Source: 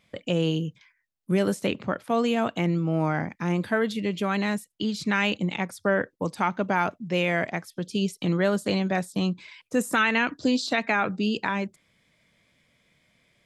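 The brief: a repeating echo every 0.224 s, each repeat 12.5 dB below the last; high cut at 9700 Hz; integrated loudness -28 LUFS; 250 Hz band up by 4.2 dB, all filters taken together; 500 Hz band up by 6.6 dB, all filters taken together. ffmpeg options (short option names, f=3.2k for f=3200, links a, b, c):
-af "lowpass=9.7k,equalizer=f=250:t=o:g=4,equalizer=f=500:t=o:g=7,aecho=1:1:224|448|672:0.237|0.0569|0.0137,volume=-6dB"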